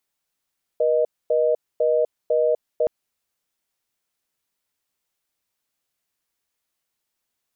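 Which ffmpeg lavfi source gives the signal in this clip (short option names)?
-f lavfi -i "aevalsrc='0.112*(sin(2*PI*480*t)+sin(2*PI*620*t))*clip(min(mod(t,0.5),0.25-mod(t,0.5))/0.005,0,1)':d=2.07:s=44100"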